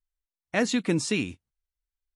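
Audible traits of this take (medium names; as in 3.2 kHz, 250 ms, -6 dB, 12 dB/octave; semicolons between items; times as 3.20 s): noise floor -94 dBFS; spectral tilt -4.5 dB/octave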